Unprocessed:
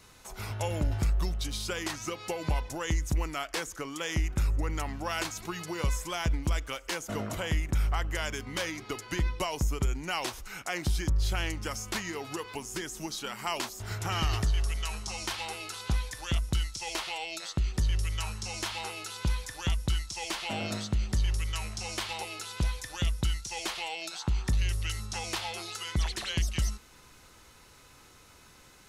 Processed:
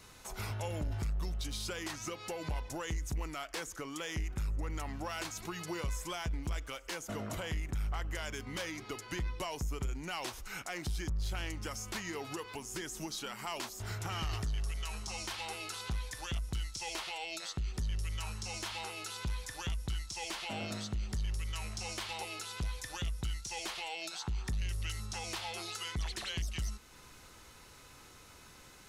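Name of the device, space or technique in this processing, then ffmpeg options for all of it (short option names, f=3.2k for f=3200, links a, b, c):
soft clipper into limiter: -af "asoftclip=type=tanh:threshold=-23dB,alimiter=level_in=6dB:limit=-24dB:level=0:latency=1:release=360,volume=-6dB"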